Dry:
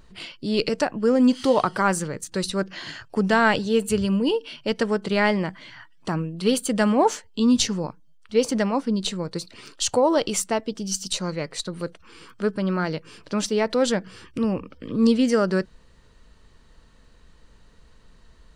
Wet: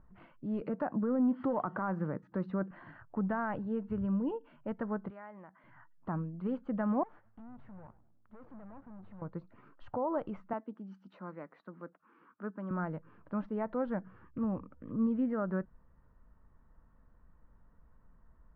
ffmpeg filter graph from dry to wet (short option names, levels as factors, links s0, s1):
-filter_complex "[0:a]asettb=1/sr,asplit=3[s0][s1][s2];[s0]atrim=end=0.614[s3];[s1]atrim=start=0.61:end=2.71,asetpts=PTS-STARTPTS,afade=t=in:d=0.004:c=qsin,afade=t=out:st=2.096:d=0.004:c=qsin,highpass=190,lowshelf=f=410:g=6,acontrast=33[s4];[s2]atrim=start=2.706[s5];[s3][s4]acrossfade=d=0.004:c1=hsin:c2=qsin[s6];[s6][s5]acrossfade=d=0.004:c1=qsin:c2=hsin,asettb=1/sr,asplit=3[s7][s8][s9];[s7]atrim=end=5.104[s10];[s8]atrim=start=5.1:end=5.64,asetpts=PTS-STARTPTS,afade=t=in:d=0.004:c=qsin,afade=t=out:st=0.536:d=0.004:c=qsin,highpass=f=620:p=1,acompressor=threshold=0.00794:ratio=2:attack=3.2:release=140:knee=1:detection=peak[s11];[s9]atrim=start=5.636[s12];[s10][s11]acrossfade=d=0.004:c1=hsin:c2=qsin[s13];[s13][s12]acrossfade=d=0.004:c1=qsin:c2=hsin,asettb=1/sr,asplit=3[s14][s15][s16];[s14]atrim=end=7.034[s17];[s15]atrim=start=7.03:end=9.22,asetpts=PTS-STARTPTS,afade=t=in:d=0.004:c=qsin,afade=t=out:st=2.186:d=0.004:c=qsin,acompressor=threshold=0.0501:ratio=4:attack=3.2:release=140:knee=1:detection=peak,aeval=exprs='(tanh(89.1*val(0)+0.7)-tanh(0.7))/89.1':c=same,asplit=5[s18][s19][s20][s21][s22];[s19]adelay=101,afreqshift=-110,volume=0.141[s23];[s20]adelay=202,afreqshift=-220,volume=0.0638[s24];[s21]adelay=303,afreqshift=-330,volume=0.0285[s25];[s22]adelay=404,afreqshift=-440,volume=0.0129[s26];[s18][s23][s24][s25][s26]amix=inputs=5:normalize=0,atrim=end_sample=96579[s27];[s16]atrim=start=9.216[s28];[s17][s27]acrossfade=d=0.004:c1=hsin:c2=qsin[s29];[s29][s28]acrossfade=d=0.004:c1=qsin:c2=hsin,asettb=1/sr,asplit=3[s30][s31][s32];[s30]atrim=end=10.534[s33];[s31]atrim=start=10.53:end=12.71,asetpts=PTS-STARTPTS,afade=t=in:d=0.004:c=qsin,afade=t=out:st=2.176:d=0.004:c=qsin,highpass=f=220:w=0.5412,highpass=f=220:w=1.3066,equalizer=f=560:t=o:w=1.4:g=-4.5[s34];[s32]atrim=start=12.706[s35];[s33][s34]acrossfade=d=0.004:c1=hsin:c2=qsin[s36];[s36][s35]acrossfade=d=0.004:c1=qsin:c2=hsin,alimiter=limit=0.224:level=0:latency=1:release=96,lowpass=f=1400:w=0.5412,lowpass=f=1400:w=1.3066,equalizer=f=420:w=2.1:g=-8,volume=0.376"